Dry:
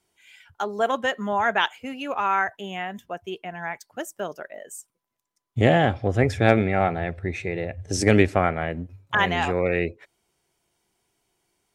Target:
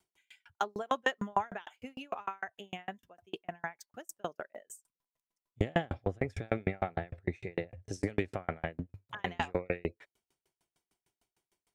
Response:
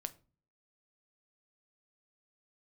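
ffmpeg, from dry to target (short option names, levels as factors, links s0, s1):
-filter_complex "[0:a]alimiter=limit=0.211:level=0:latency=1:release=77,asettb=1/sr,asplit=3[s0][s1][s2];[s0]atrim=end=2.264[s3];[s1]atrim=start=2.26:end=2.79,asetpts=PTS-STARTPTS,afade=t=in:d=0.004:c=qsin,afade=t=out:st=0.526:d=0.004:c=qsin,acompressor=threshold=0.0355:ratio=3[s4];[s2]atrim=start=2.786[s5];[s3][s4]acrossfade=d=0.004:c1=hsin:c2=qsin[s6];[s6][s5]acrossfade=d=0.004:c1=qsin:c2=hsin,aeval=exprs='val(0)*pow(10,-40*if(lt(mod(6.6*n/s,1),2*abs(6.6)/1000),1-mod(6.6*n/s,1)/(2*abs(6.6)/1000),(mod(6.6*n/s,1)-2*abs(6.6)/1000)/(1-2*abs(6.6)/1000))/20)':c=same"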